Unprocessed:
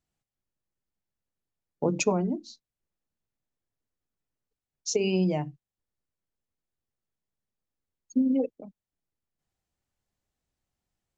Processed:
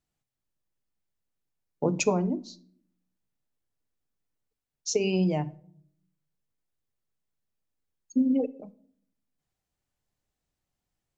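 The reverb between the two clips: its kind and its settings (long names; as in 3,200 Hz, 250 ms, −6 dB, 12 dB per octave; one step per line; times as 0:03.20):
rectangular room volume 930 cubic metres, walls furnished, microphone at 0.4 metres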